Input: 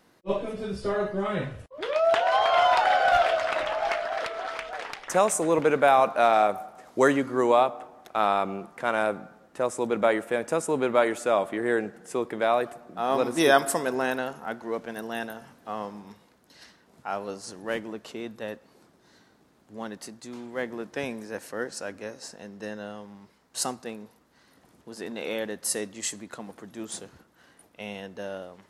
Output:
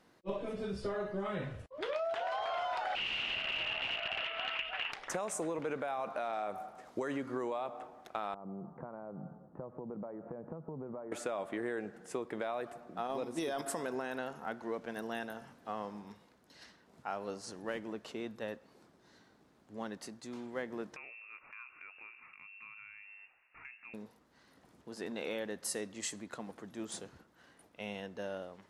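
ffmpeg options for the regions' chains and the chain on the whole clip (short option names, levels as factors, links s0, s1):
-filter_complex "[0:a]asettb=1/sr,asplit=3[s0][s1][s2];[s0]atrim=end=2.954[s3];[s1]atrim=start=2.95:end=4.92,asetpts=PTS-STARTPTS,afade=t=in:d=0.004:c=qsin,afade=t=out:st=1.966:d=0.004:c=qsin,equalizer=f=450:w=1.3:g=-10.5,aeval=exprs='(mod(20*val(0)+1,2)-1)/20':c=same,lowpass=f=2800:t=q:w=13[s4];[s2]atrim=start=4.916[s5];[s3][s4]acrossfade=d=0.004:c1=hsin:c2=qsin[s6];[s6][s5]acrossfade=d=0.004:c1=qsin:c2=hsin,asettb=1/sr,asplit=3[s7][s8][s9];[s7]atrim=end=8.344[s10];[s8]atrim=start=8.34:end=11.12,asetpts=PTS-STARTPTS,afade=t=in:d=0.004:c=qsin,afade=t=out:st=2.776:d=0.004:c=qsin,equalizer=f=150:t=o:w=0.83:g=15,acompressor=threshold=0.02:ratio=20:attack=3.2:release=140:knee=1:detection=peak,lowpass=f=1100:w=0.5412,lowpass=f=1100:w=1.3066[s11];[s9]atrim=start=11.116[s12];[s10][s11]acrossfade=d=0.004:c1=hsin:c2=qsin[s13];[s13][s12]acrossfade=d=0.004:c1=qsin:c2=hsin,asettb=1/sr,asplit=3[s14][s15][s16];[s14]atrim=end=13.074[s17];[s15]atrim=start=13.07:end=13.66,asetpts=PTS-STARTPTS,afade=t=in:d=0.004:c=qsin,afade=t=out:st=0.586:d=0.004:c=qsin,agate=range=0.355:threshold=0.0501:ratio=16:release=100:detection=peak,equalizer=f=1500:t=o:w=1.1:g=-5.5,acontrast=67[s18];[s16]atrim=start=13.656[s19];[s17][s18]acrossfade=d=0.004:c1=hsin:c2=qsin[s20];[s20][s19]acrossfade=d=0.004:c1=qsin:c2=hsin,asettb=1/sr,asplit=3[s21][s22][s23];[s21]atrim=end=20.964[s24];[s22]atrim=start=20.96:end=23.94,asetpts=PTS-STARTPTS,afade=t=in:d=0.004:c=qsin,afade=t=out:st=2.976:d=0.004:c=qsin,lowpass=f=2500:t=q:w=0.5098,lowpass=f=2500:t=q:w=0.6013,lowpass=f=2500:t=q:w=0.9,lowpass=f=2500:t=q:w=2.563,afreqshift=-2900,acompressor=threshold=0.00501:ratio=3:attack=3.2:release=140:knee=1:detection=peak[s25];[s23]atrim=start=23.936[s26];[s24][s25]acrossfade=d=0.004:c1=hsin:c2=qsin[s27];[s27][s26]acrossfade=d=0.004:c1=qsin:c2=hsin,highshelf=f=10000:g=-9,alimiter=limit=0.15:level=0:latency=1:release=31,acompressor=threshold=0.0355:ratio=6,volume=0.596"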